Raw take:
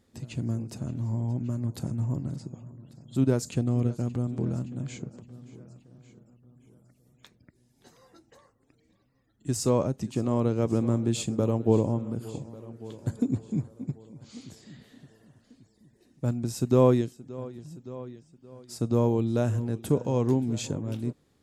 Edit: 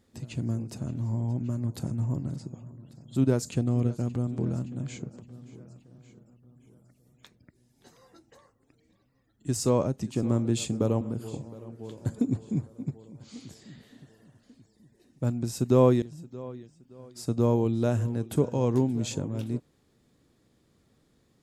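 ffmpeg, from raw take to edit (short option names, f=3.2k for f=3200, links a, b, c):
-filter_complex "[0:a]asplit=4[a][b][c][d];[a]atrim=end=10.232[e];[b]atrim=start=10.808:end=11.592[f];[c]atrim=start=12.018:end=17.032[g];[d]atrim=start=17.548[h];[e][f]acrossfade=d=0.004:c1=hsin:c2=hsin[i];[i][g]acrossfade=d=0.004:c1=hsin:c2=hsin[j];[j][h]acrossfade=d=0.004:c1=hsin:c2=hsin"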